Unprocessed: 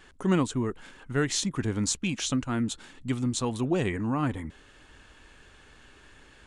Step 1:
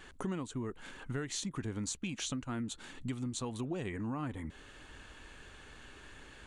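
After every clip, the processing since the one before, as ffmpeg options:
-af "bandreject=f=5200:w=14,acompressor=threshold=0.0141:ratio=5,volume=1.12"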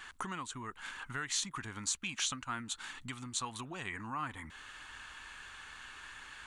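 -af "lowshelf=f=730:t=q:w=1.5:g=-12,volume=1.68"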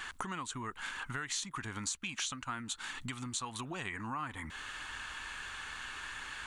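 -af "acompressor=threshold=0.00501:ratio=2.5,volume=2.24"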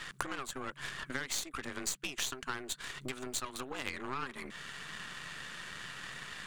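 -af "afreqshift=130,aeval=exprs='0.0794*(cos(1*acos(clip(val(0)/0.0794,-1,1)))-cos(1*PI/2))+0.0178*(cos(3*acos(clip(val(0)/0.0794,-1,1)))-cos(3*PI/2))+0.00355*(cos(8*acos(clip(val(0)/0.0794,-1,1)))-cos(8*PI/2))':c=same,volume=2.24"

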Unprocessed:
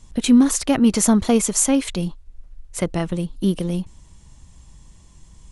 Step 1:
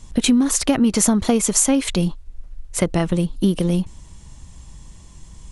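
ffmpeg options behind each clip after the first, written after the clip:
-af "acompressor=threshold=0.126:ratio=12,volume=1.88"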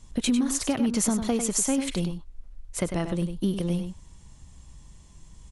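-filter_complex "[0:a]asplit=2[s0][s1];[s1]adelay=99.13,volume=0.398,highshelf=f=4000:g=-2.23[s2];[s0][s2]amix=inputs=2:normalize=0,volume=0.376"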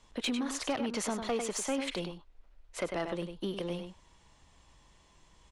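-filter_complex "[0:a]acrossover=split=360 4600:gain=0.158 1 0.178[s0][s1][s2];[s0][s1][s2]amix=inputs=3:normalize=0,aeval=exprs='0.158*sin(PI/2*1.78*val(0)/0.158)':c=same,volume=0.376"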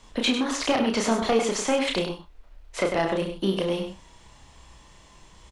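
-filter_complex "[0:a]acrossover=split=6700[s0][s1];[s1]acompressor=threshold=0.00178:ratio=4:attack=1:release=60[s2];[s0][s2]amix=inputs=2:normalize=0,aecho=1:1:31|67:0.631|0.168,volume=2.82"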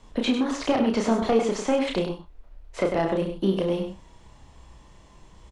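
-filter_complex "[0:a]tiltshelf=f=1100:g=4.5,acrossover=split=9100[s0][s1];[s1]acompressor=threshold=0.00112:ratio=4:attack=1:release=60[s2];[s0][s2]amix=inputs=2:normalize=0,volume=0.794"

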